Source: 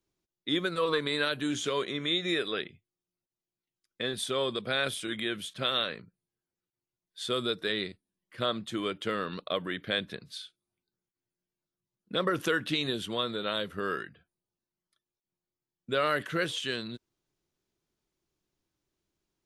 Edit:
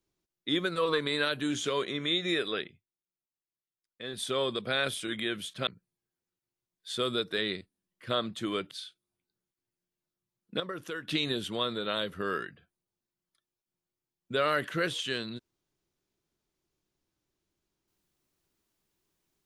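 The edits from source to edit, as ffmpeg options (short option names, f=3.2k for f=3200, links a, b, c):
-filter_complex "[0:a]asplit=7[a][b][c][d][e][f][g];[a]atrim=end=2.87,asetpts=PTS-STARTPTS,afade=t=out:st=2.56:d=0.31:silence=0.281838[h];[b]atrim=start=2.87:end=3.99,asetpts=PTS-STARTPTS,volume=-11dB[i];[c]atrim=start=3.99:end=5.672,asetpts=PTS-STARTPTS,afade=t=in:d=0.31:silence=0.281838[j];[d]atrim=start=5.978:end=9.022[k];[e]atrim=start=10.288:end=12.182[l];[f]atrim=start=12.178:end=12.662,asetpts=PTS-STARTPTS,volume=-10dB[m];[g]atrim=start=12.658[n];[h][i][j]concat=n=3:v=0:a=1[o];[o][k]acrossfade=d=0.004:c1=hsin:c2=hsin[p];[p][l]acrossfade=d=0.004:c1=hsin:c2=hsin[q];[q][m]acrossfade=d=0.004:c1=hsin:c2=hsin[r];[r][n]acrossfade=d=0.004:c1=hsin:c2=hsin"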